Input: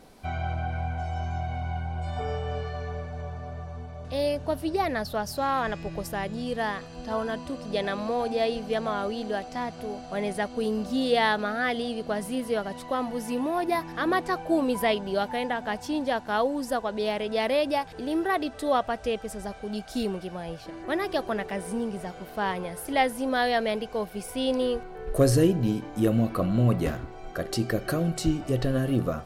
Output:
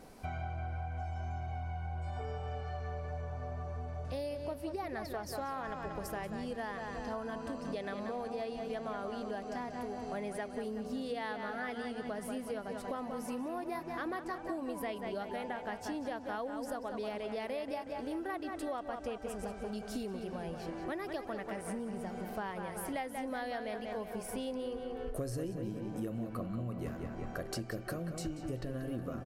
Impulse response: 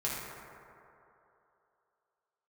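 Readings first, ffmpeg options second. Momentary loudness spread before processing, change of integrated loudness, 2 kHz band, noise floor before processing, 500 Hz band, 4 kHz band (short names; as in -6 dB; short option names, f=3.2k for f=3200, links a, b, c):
10 LU, -11.5 dB, -12.0 dB, -43 dBFS, -11.5 dB, -15.0 dB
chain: -filter_complex "[0:a]equalizer=f=3.6k:w=2.3:g=-5.5,asplit=2[a][b];[b]adelay=185,lowpass=f=4.4k:p=1,volume=-7.5dB,asplit=2[c][d];[d]adelay=185,lowpass=f=4.4k:p=1,volume=0.53,asplit=2[e][f];[f]adelay=185,lowpass=f=4.4k:p=1,volume=0.53,asplit=2[g][h];[h]adelay=185,lowpass=f=4.4k:p=1,volume=0.53,asplit=2[i][j];[j]adelay=185,lowpass=f=4.4k:p=1,volume=0.53,asplit=2[k][l];[l]adelay=185,lowpass=f=4.4k:p=1,volume=0.53[m];[a][c][e][g][i][k][m]amix=inputs=7:normalize=0,acompressor=threshold=-35dB:ratio=6,volume=-1.5dB"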